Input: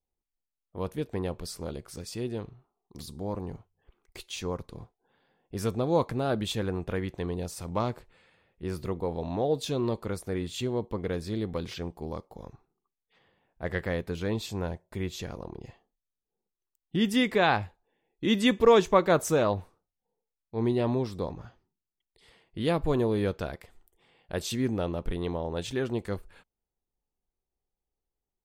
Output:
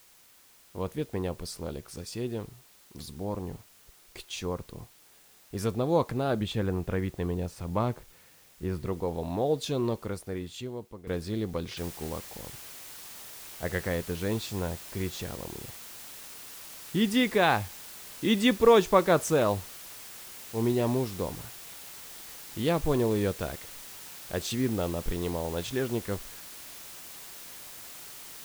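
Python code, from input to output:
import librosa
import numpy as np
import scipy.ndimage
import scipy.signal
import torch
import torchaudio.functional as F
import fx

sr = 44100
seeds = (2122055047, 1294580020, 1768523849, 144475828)

y = fx.bass_treble(x, sr, bass_db=3, treble_db=-10, at=(6.4, 8.86))
y = fx.noise_floor_step(y, sr, seeds[0], at_s=11.77, before_db=-58, after_db=-45, tilt_db=0.0)
y = fx.edit(y, sr, fx.fade_out_to(start_s=9.86, length_s=1.21, floor_db=-15.0), tone=tone)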